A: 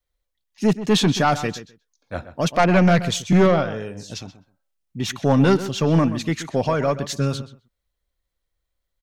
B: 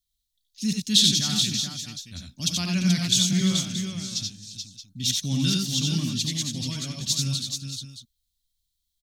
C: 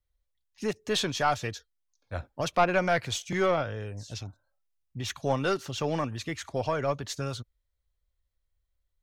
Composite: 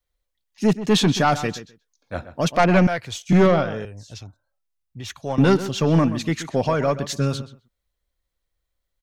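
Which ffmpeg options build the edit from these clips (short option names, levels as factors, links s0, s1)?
-filter_complex "[2:a]asplit=2[s0][s1];[0:a]asplit=3[s2][s3][s4];[s2]atrim=end=2.872[s5];[s0]atrim=start=2.868:end=3.292[s6];[s3]atrim=start=3.288:end=3.852[s7];[s1]atrim=start=3.848:end=5.382[s8];[s4]atrim=start=5.378[s9];[s5][s6]acrossfade=d=0.004:c1=hsin:c2=hsin[s10];[s10][s7]acrossfade=d=0.004:c1=hsin:c2=hsin[s11];[s11][s8]acrossfade=d=0.004:c1=hsin:c2=hsin[s12];[s12][s9]acrossfade=d=0.004:c1=hsin:c2=hsin"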